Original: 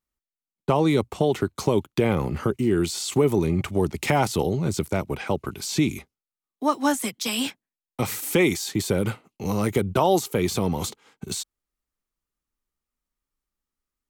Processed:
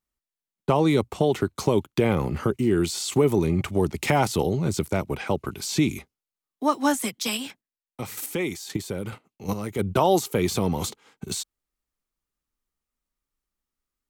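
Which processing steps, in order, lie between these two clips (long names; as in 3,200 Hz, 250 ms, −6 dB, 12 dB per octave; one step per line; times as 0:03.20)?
0:07.36–0:09.78: square-wave tremolo 1.2 Hz → 3.4 Hz, depth 60%, duty 15%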